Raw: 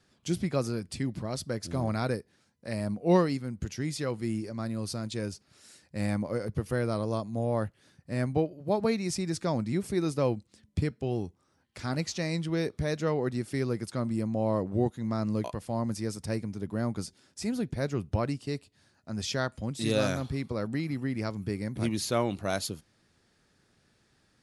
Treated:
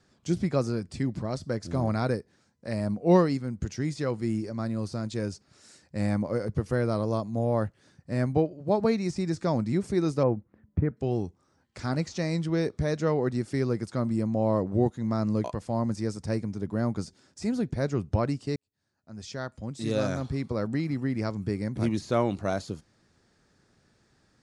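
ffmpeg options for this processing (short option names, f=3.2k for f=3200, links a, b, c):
-filter_complex "[0:a]asettb=1/sr,asplit=3[a][b][c];[a]atrim=end=10.234[d];[b]atrim=start=10.23:end=10.97,asetpts=PTS-STARTPTS,afade=t=in:d=0.004:c=qsin,afade=t=out:st=0.736:d=0.004:c=qsin,lowpass=f=1.8k:w=0.5412,lowpass=f=1.8k:w=1.3066[e];[c]atrim=start=10.966[f];[d][e]acrossfade=d=0.004:c1=hsin:c2=qsin[g];[g][f]acrossfade=d=0.004:c1=qsin:c2=hsin,asplit=2[h][i];[h]atrim=end=18.56,asetpts=PTS-STARTPTS,afade=t=out:st=18.556:d=0.004:c=hsin[j];[i]atrim=start=18.56,asetpts=PTS-STARTPTS,afade=t=in:d=1.99[k];[j][k]concat=n=2:v=0:a=1,deesser=0.95,lowpass=f=8.3k:w=0.5412,lowpass=f=8.3k:w=1.3066,equalizer=f=3k:t=o:w=1.2:g=-5.5,volume=3dB"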